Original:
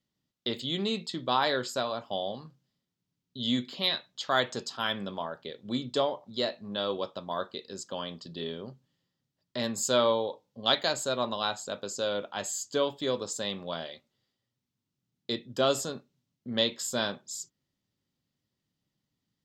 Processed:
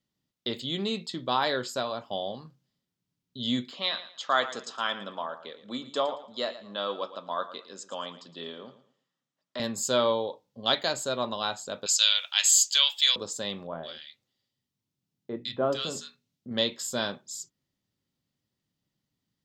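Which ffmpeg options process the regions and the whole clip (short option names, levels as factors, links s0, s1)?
-filter_complex "[0:a]asettb=1/sr,asplit=3[s0][s1][s2];[s0]atrim=end=3.714[s3];[s1]atrim=start=3.71:end=9.6,asetpts=PTS-STARTPTS,afade=t=in:d=0.004:c=qsin,afade=t=out:st=5.886:d=0.004:c=qsin,highpass=280,equalizer=f=380:t=q:w=4:g=-6,equalizer=f=1200:t=q:w=4:g=6,equalizer=f=4600:t=q:w=4:g=-6,lowpass=f=8500:w=0.5412,lowpass=f=8500:w=1.3066,aecho=1:1:113|226|339:0.2|0.0539|0.0145,atrim=end_sample=259749[s4];[s2]atrim=start=9.596[s5];[s3][s4]acrossfade=d=0.004:c1=hsin:c2=qsin[s6];[s6][s5]acrossfade=d=0.004:c1=qsin:c2=hsin,asettb=1/sr,asplit=3[s7][s8][s9];[s7]atrim=end=11.864[s10];[s8]atrim=start=11.86:end=13.16,asetpts=PTS-STARTPTS,afade=t=in:d=0.004:c=qsin,afade=t=out:st=1.296:d=0.004:c=qsin,highpass=f=920:w=0.5412,highpass=f=920:w=1.3066,highshelf=f=1700:t=q:w=1.5:g=14[s11];[s9]atrim=start=13.156[s12];[s10][s11]acrossfade=d=0.004:c1=hsin:c2=qsin[s13];[s13][s12]acrossfade=d=0.004:c1=qsin:c2=hsin,asettb=1/sr,asplit=3[s14][s15][s16];[s14]atrim=end=13.674[s17];[s15]atrim=start=13.67:end=16.51,asetpts=PTS-STARTPTS,afade=t=in:d=0.004:c=qsin,afade=t=out:st=2.836:d=0.004:c=qsin,bandreject=f=60:t=h:w=6,bandreject=f=120:t=h:w=6,bandreject=f=180:t=h:w=6,bandreject=f=240:t=h:w=6,bandreject=f=300:t=h:w=6,bandreject=f=360:t=h:w=6,bandreject=f=420:t=h:w=6,bandreject=f=480:t=h:w=6,bandreject=f=540:t=h:w=6,acrossover=split=7600[s18][s19];[s19]acompressor=threshold=0.002:ratio=4:attack=1:release=60[s20];[s18][s20]amix=inputs=2:normalize=0,acrossover=split=1600[s21][s22];[s22]adelay=160[s23];[s21][s23]amix=inputs=2:normalize=0,atrim=end_sample=125244[s24];[s16]atrim=start=16.506[s25];[s17][s24]acrossfade=d=0.004:c1=hsin:c2=qsin[s26];[s26][s25]acrossfade=d=0.004:c1=qsin:c2=hsin"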